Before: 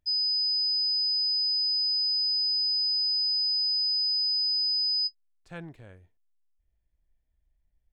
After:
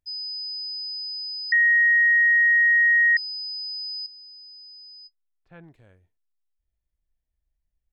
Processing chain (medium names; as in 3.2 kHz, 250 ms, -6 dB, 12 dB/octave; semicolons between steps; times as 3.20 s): 1.52–3.17 s: bleep 1.88 kHz -8.5 dBFS; 4.06–5.64 s: low-pass 2.5 kHz 12 dB/octave; trim -6 dB